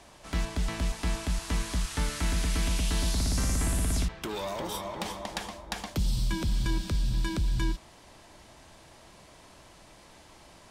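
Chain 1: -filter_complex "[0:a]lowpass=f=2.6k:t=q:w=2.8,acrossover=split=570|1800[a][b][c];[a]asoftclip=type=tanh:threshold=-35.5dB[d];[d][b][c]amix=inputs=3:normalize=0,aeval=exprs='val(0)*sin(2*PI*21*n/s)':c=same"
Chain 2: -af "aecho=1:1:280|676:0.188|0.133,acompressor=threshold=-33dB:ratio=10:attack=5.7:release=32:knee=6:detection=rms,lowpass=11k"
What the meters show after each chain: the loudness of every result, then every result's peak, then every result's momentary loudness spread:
-37.5, -38.0 LUFS; -17.0, -22.0 dBFS; 20, 16 LU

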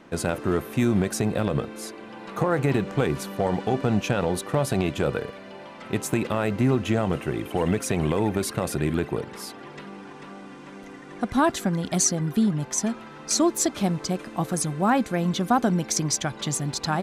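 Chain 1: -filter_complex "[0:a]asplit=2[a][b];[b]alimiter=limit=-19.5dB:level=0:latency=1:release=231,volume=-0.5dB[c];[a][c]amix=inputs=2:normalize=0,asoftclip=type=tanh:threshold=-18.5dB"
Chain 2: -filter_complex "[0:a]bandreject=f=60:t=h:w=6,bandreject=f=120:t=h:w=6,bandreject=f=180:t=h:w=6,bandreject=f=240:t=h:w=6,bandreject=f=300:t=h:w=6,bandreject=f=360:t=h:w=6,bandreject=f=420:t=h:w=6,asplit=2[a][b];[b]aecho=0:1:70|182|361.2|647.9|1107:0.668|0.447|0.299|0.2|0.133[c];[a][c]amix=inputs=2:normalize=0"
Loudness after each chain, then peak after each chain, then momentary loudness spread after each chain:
-25.5, -23.5 LUFS; -18.5, -7.0 dBFS; 11, 13 LU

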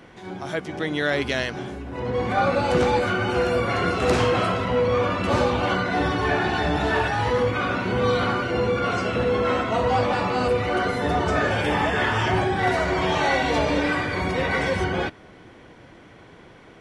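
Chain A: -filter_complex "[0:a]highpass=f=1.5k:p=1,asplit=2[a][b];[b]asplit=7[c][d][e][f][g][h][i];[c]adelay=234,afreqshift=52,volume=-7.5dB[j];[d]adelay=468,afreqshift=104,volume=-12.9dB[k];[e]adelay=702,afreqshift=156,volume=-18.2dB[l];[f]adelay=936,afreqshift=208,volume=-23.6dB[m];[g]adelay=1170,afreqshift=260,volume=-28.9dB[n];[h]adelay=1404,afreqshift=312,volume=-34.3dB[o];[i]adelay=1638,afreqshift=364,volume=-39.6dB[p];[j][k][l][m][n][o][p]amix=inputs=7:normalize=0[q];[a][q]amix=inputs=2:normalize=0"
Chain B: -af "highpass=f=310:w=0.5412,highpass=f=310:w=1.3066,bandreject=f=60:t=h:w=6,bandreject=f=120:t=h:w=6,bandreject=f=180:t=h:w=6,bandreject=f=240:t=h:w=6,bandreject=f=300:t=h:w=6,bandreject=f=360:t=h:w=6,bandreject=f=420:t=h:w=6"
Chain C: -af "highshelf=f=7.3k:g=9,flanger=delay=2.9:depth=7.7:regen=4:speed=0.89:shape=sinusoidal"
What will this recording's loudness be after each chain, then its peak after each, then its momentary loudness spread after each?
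-27.5, -23.5, -25.5 LUFS; -13.0, -10.5, -11.5 dBFS; 8, 6, 5 LU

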